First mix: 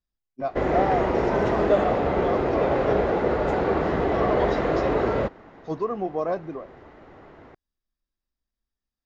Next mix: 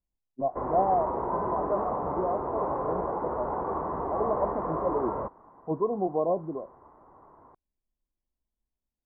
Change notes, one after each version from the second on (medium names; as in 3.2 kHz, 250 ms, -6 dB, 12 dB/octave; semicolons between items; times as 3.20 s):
speech: add brick-wall FIR low-pass 1.1 kHz; background: add four-pole ladder low-pass 1.1 kHz, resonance 75%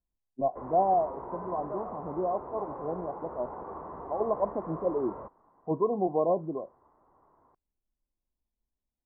background -10.5 dB; master: remove distance through air 140 m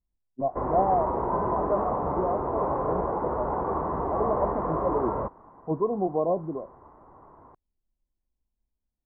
background +12.0 dB; master: add bass shelf 190 Hz +6 dB